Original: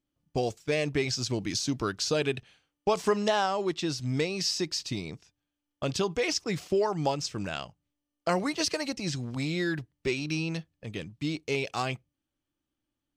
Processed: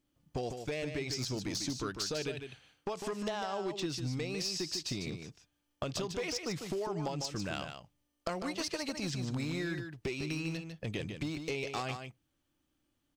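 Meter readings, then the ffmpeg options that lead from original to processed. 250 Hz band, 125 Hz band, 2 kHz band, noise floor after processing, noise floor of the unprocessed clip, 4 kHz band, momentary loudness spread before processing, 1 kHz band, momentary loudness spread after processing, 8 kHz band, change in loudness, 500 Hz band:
-6.0 dB, -5.0 dB, -7.0 dB, -80 dBFS, under -85 dBFS, -6.0 dB, 9 LU, -8.5 dB, 7 LU, -5.5 dB, -7.0 dB, -8.5 dB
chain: -filter_complex "[0:a]acompressor=threshold=-38dB:ratio=16,aeval=exprs='clip(val(0),-1,0.015)':c=same,asplit=2[a][b];[b]aecho=0:1:150:0.447[c];[a][c]amix=inputs=2:normalize=0,volume=5.5dB"

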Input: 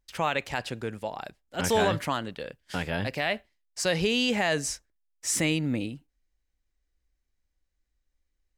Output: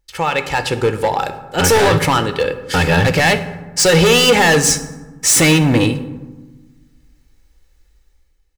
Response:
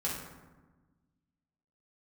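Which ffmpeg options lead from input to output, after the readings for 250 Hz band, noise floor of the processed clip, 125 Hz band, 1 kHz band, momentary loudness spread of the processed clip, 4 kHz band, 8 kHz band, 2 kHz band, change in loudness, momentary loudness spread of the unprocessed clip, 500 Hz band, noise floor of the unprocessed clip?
+13.5 dB, -57 dBFS, +17.0 dB, +14.0 dB, 12 LU, +14.5 dB, +16.5 dB, +14.5 dB, +14.5 dB, 14 LU, +14.5 dB, -79 dBFS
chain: -filter_complex "[0:a]aecho=1:1:2.3:0.52,dynaudnorm=f=150:g=9:m=14dB,volume=17dB,asoftclip=hard,volume=-17dB,asplit=2[a][b];[1:a]atrim=start_sample=2205[c];[b][c]afir=irnorm=-1:irlink=0,volume=-10.5dB[d];[a][d]amix=inputs=2:normalize=0,volume=5.5dB"

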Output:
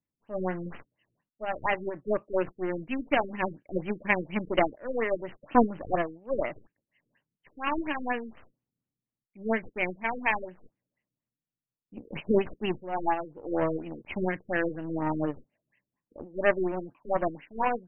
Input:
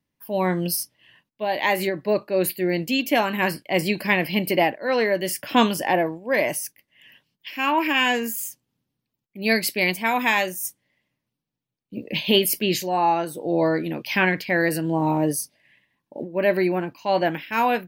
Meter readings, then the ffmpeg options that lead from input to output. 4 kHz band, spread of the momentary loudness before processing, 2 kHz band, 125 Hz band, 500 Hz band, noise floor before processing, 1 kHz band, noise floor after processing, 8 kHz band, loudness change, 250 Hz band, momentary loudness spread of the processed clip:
-18.0 dB, 10 LU, -9.5 dB, -9.0 dB, -6.5 dB, -83 dBFS, -7.0 dB, under -85 dBFS, under -40 dB, -8.0 dB, -7.5 dB, 11 LU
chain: -af "aeval=exprs='0.562*(cos(1*acos(clip(val(0)/0.562,-1,1)))-cos(1*PI/2))+0.0708*(cos(3*acos(clip(val(0)/0.562,-1,1)))-cos(3*PI/2))+0.0501*(cos(4*acos(clip(val(0)/0.562,-1,1)))-cos(4*PI/2))+0.0282*(cos(7*acos(clip(val(0)/0.562,-1,1)))-cos(7*PI/2))+0.00708*(cos(8*acos(clip(val(0)/0.562,-1,1)))-cos(8*PI/2))':c=same,afftfilt=real='re*lt(b*sr/1024,490*pow(3200/490,0.5+0.5*sin(2*PI*4.2*pts/sr)))':imag='im*lt(b*sr/1024,490*pow(3200/490,0.5+0.5*sin(2*PI*4.2*pts/sr)))':win_size=1024:overlap=0.75"

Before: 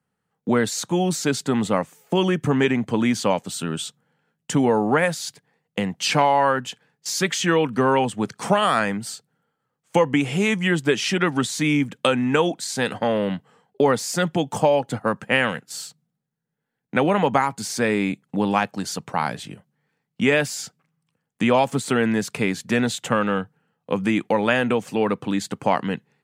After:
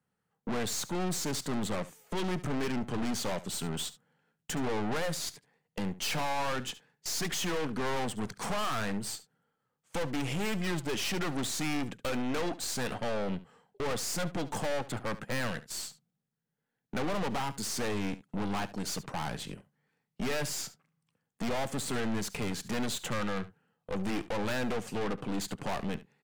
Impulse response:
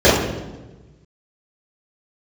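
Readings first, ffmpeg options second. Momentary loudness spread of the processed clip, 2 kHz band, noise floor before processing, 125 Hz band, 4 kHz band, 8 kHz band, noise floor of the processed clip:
6 LU, -13.0 dB, -79 dBFS, -10.5 dB, -8.5 dB, -6.5 dB, -84 dBFS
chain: -af "aeval=exprs='(tanh(31.6*val(0)+0.65)-tanh(0.65))/31.6':c=same,aecho=1:1:71:0.15,volume=-1dB"

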